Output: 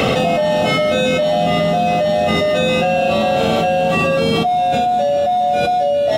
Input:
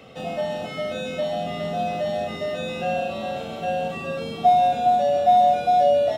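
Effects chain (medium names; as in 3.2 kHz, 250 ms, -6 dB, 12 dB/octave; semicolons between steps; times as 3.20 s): dynamic bell 890 Hz, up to -4 dB, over -27 dBFS, Q 1.5; level flattener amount 100%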